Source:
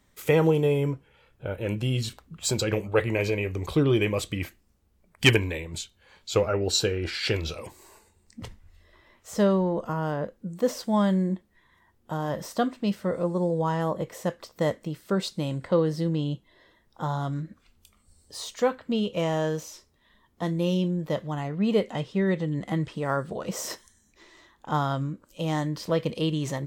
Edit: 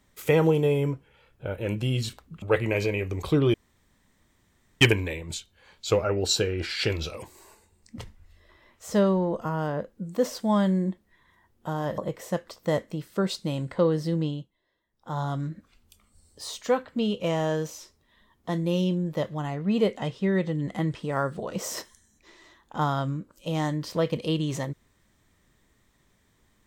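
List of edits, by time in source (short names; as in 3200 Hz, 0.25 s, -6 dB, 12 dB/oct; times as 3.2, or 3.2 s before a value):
2.42–2.86 cut
3.98–5.25 room tone
12.42–13.91 cut
16.18–17.13 dip -17.5 dB, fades 0.39 s quadratic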